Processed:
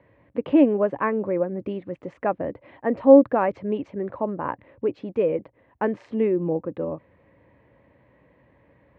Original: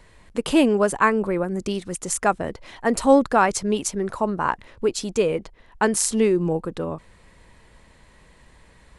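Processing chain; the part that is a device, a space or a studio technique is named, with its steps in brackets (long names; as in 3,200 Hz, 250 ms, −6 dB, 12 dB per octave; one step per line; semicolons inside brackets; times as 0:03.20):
bass cabinet (loudspeaker in its box 71–2,300 Hz, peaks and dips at 120 Hz +7 dB, 290 Hz +10 dB, 550 Hz +10 dB, 1,400 Hz −6 dB)
level −6 dB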